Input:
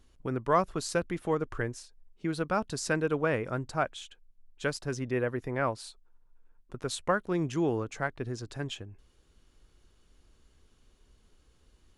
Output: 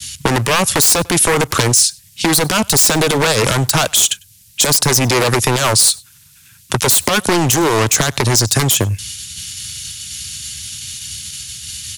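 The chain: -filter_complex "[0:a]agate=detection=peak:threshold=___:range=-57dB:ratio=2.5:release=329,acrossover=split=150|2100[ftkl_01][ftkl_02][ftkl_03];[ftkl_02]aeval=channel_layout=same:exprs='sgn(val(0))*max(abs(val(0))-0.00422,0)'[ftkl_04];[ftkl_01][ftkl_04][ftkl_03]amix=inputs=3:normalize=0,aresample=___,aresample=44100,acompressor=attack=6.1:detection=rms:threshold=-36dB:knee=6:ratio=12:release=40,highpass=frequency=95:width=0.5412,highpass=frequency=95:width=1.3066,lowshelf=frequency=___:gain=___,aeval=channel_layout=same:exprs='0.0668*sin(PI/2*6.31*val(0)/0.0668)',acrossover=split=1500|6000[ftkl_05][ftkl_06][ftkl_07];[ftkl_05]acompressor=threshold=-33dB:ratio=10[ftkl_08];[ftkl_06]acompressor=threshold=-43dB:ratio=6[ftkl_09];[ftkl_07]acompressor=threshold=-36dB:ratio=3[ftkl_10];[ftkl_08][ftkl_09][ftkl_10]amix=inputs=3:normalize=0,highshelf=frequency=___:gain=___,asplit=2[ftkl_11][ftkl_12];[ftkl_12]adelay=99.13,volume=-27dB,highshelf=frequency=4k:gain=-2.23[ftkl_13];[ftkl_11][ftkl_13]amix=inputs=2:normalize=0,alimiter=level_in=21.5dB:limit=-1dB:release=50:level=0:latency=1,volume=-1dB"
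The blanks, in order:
-58dB, 32000, 340, -3.5, 3.8k, 12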